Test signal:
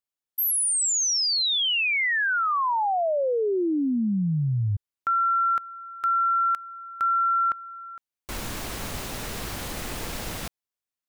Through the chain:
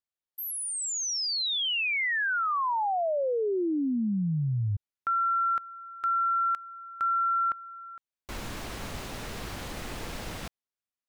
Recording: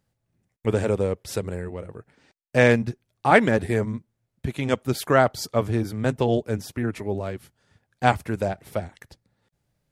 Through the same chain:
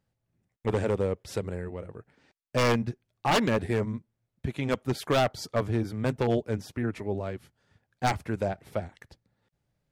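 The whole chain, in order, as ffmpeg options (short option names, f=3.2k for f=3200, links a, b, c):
-af "highshelf=f=7.6k:g=-9.5,aeval=exprs='0.211*(abs(mod(val(0)/0.211+3,4)-2)-1)':c=same,volume=-3.5dB"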